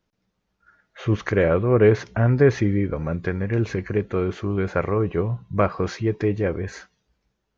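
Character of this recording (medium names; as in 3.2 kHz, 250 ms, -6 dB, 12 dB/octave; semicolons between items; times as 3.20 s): noise floor -76 dBFS; spectral tilt -6.0 dB/octave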